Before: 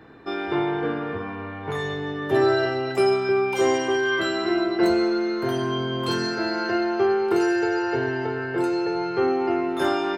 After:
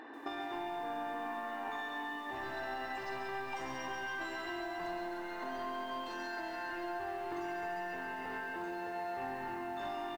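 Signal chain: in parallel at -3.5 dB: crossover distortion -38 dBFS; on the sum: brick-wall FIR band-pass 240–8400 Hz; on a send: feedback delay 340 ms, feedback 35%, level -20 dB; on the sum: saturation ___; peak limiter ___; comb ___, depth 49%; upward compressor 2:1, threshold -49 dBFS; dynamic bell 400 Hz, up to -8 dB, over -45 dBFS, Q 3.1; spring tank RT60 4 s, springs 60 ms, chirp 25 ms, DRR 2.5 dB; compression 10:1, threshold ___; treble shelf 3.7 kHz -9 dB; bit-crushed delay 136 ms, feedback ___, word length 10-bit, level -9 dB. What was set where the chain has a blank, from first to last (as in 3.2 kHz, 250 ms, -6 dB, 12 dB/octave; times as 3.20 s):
-14.5 dBFS, -22 dBFS, 1.1 ms, -37 dBFS, 80%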